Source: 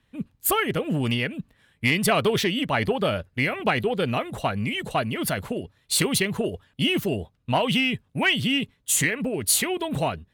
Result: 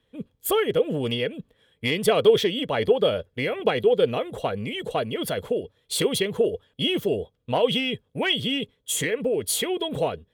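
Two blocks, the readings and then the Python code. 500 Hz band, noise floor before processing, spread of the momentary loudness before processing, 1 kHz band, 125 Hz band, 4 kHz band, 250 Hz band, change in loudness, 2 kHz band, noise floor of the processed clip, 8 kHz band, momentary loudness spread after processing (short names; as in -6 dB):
+5.0 dB, -67 dBFS, 7 LU, -3.0 dB, -5.0 dB, 0.0 dB, -3.0 dB, -0.5 dB, -5.5 dB, -71 dBFS, -5.5 dB, 8 LU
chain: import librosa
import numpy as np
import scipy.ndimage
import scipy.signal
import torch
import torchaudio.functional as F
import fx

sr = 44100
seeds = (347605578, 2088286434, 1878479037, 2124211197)

y = fx.small_body(x, sr, hz=(470.0, 3300.0), ring_ms=25, db=15)
y = y * librosa.db_to_amplitude(-5.5)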